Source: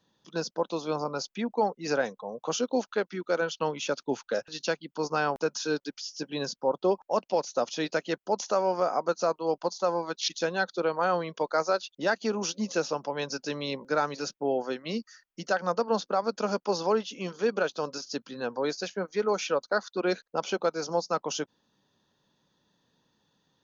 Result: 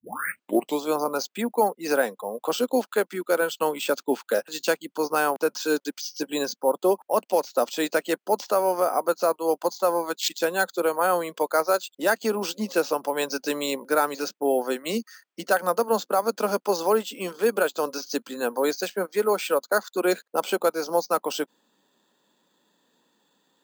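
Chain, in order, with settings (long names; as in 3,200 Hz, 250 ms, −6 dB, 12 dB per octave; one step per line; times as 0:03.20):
turntable start at the beginning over 0.83 s
high-pass filter 220 Hz 24 dB per octave
in parallel at −2.5 dB: speech leveller within 4 dB 0.5 s
on the sum: floating-point word with a short mantissa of 6 bits
bad sample-rate conversion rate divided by 4×, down filtered, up hold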